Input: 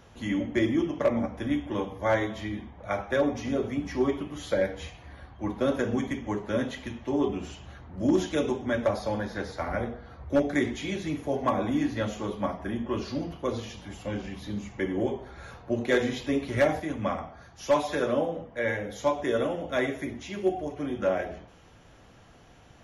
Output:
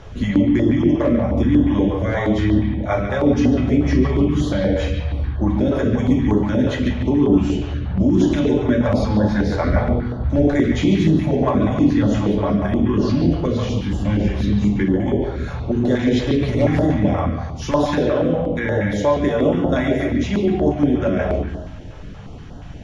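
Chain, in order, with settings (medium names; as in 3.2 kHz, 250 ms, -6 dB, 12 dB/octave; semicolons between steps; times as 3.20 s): low-pass 6.4 kHz 12 dB/octave; bass shelf 450 Hz +11 dB; peak limiter -19.5 dBFS, peak gain reduction 13 dB; bucket-brigade echo 142 ms, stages 4096, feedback 36%, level -5 dB; reverberation RT60 0.35 s, pre-delay 5 ms, DRR 6 dB; step-sequenced notch 8.4 Hz 220–2300 Hz; trim +9 dB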